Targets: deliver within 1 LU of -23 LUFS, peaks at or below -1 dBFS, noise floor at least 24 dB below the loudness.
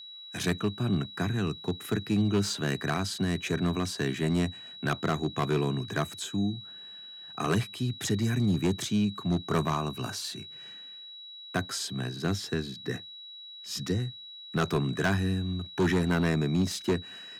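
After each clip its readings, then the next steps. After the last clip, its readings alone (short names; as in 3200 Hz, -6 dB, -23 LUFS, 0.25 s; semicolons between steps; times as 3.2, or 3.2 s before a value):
clipped 1.1%; flat tops at -20.0 dBFS; steady tone 3900 Hz; tone level -43 dBFS; loudness -30.0 LUFS; peak -20.0 dBFS; loudness target -23.0 LUFS
-> clip repair -20 dBFS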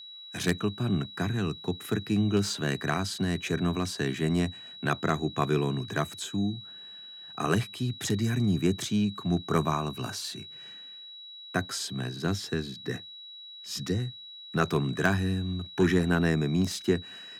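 clipped 0.0%; steady tone 3900 Hz; tone level -43 dBFS
-> notch 3900 Hz, Q 30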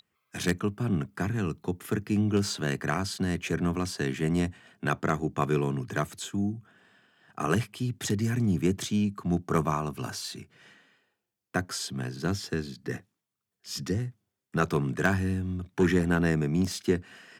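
steady tone none; loudness -29.5 LUFS; peak -11.0 dBFS; loudness target -23.0 LUFS
-> gain +6.5 dB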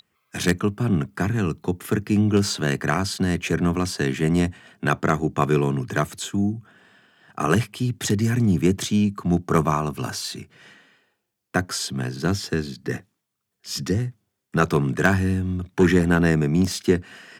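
loudness -23.0 LUFS; peak -4.5 dBFS; noise floor -79 dBFS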